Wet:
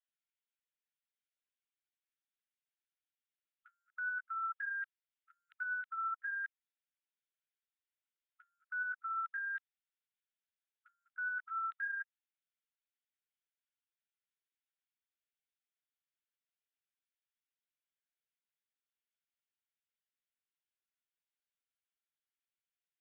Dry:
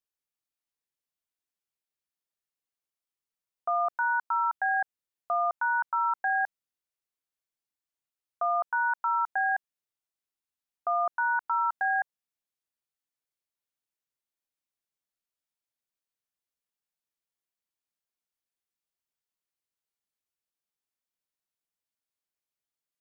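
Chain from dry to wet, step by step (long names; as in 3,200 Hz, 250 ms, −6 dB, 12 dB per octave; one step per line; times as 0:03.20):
linear-prediction vocoder at 8 kHz pitch kept
brickwall limiter −28 dBFS, peak gain reduction 10.5 dB
linear-phase brick-wall high-pass 1,300 Hz
level −2 dB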